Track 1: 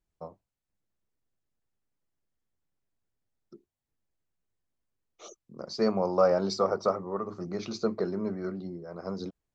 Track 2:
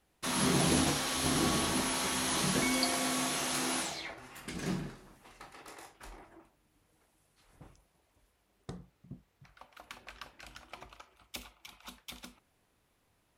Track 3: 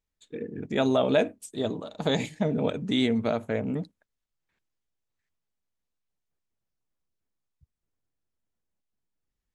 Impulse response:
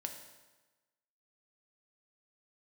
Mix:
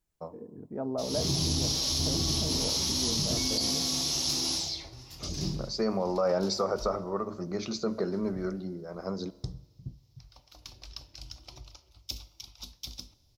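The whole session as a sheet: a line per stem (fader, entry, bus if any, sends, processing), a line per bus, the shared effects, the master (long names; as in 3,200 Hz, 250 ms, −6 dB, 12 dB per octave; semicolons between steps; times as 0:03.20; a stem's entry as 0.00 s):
−1.5 dB, 0.00 s, send −7.5 dB, high-shelf EQ 5,600 Hz +7 dB
−2.0 dB, 0.75 s, send −9.5 dB, drawn EQ curve 120 Hz 0 dB, 210 Hz −17 dB, 310 Hz −11 dB, 490 Hz −17 dB, 970 Hz −19 dB, 1,600 Hz −28 dB, 2,800 Hz −16 dB, 5,300 Hz +3 dB, 8,600 Hz −20 dB, 14,000 Hz −9 dB; automatic gain control gain up to 12.5 dB
−9.5 dB, 0.00 s, no send, low-pass filter 1,100 Hz 24 dB per octave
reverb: on, RT60 1.2 s, pre-delay 3 ms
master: brickwall limiter −18.5 dBFS, peak gain reduction 10.5 dB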